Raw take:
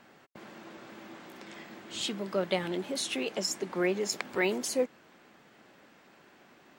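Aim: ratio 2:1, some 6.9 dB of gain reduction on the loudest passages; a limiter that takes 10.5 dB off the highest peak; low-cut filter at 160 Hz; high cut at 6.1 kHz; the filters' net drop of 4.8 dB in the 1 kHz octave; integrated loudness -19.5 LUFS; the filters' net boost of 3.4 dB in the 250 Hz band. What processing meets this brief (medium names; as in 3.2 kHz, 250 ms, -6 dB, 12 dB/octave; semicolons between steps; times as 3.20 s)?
high-pass 160 Hz; low-pass 6.1 kHz; peaking EQ 250 Hz +6.5 dB; peaking EQ 1 kHz -7.5 dB; compression 2:1, threshold -35 dBFS; trim +20.5 dB; peak limiter -8.5 dBFS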